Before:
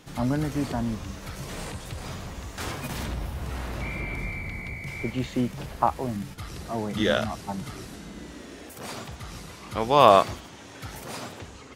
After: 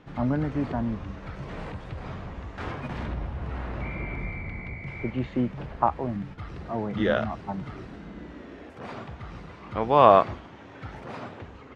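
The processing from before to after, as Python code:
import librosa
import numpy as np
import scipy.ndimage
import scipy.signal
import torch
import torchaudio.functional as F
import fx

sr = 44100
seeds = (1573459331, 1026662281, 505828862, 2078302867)

y = scipy.signal.sosfilt(scipy.signal.butter(2, 2100.0, 'lowpass', fs=sr, output='sos'), x)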